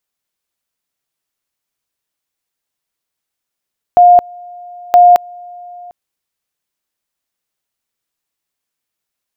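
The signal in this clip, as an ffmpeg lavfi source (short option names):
-f lavfi -i "aevalsrc='pow(10,(-2-27*gte(mod(t,0.97),0.22))/20)*sin(2*PI*709*t)':d=1.94:s=44100"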